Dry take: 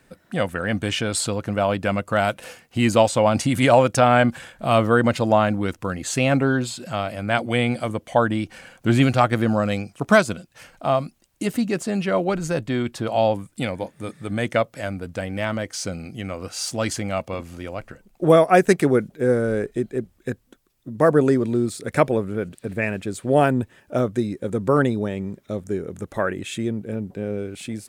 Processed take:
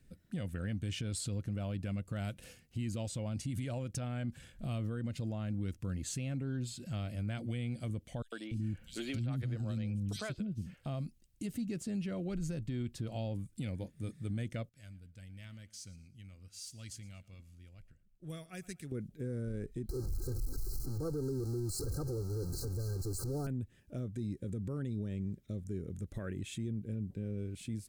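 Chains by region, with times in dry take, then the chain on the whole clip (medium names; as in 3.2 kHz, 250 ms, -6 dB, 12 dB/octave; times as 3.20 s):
8.22–10.86 s: dynamic bell 4 kHz, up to +6 dB, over -44 dBFS, Q 1.8 + three bands offset in time highs, mids, lows 100/290 ms, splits 330/3300 Hz
14.69–18.92 s: amplifier tone stack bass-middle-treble 5-5-5 + feedback delay 116 ms, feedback 37%, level -19.5 dB + tape noise reduction on one side only decoder only
19.89–23.47 s: jump at every zero crossing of -20 dBFS + brick-wall FIR band-stop 1.6–3.9 kHz + comb 2.4 ms, depth 82%
whole clip: amplifier tone stack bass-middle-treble 10-0-1; compression 3:1, threshold -41 dBFS; peak limiter -38 dBFS; trim +8.5 dB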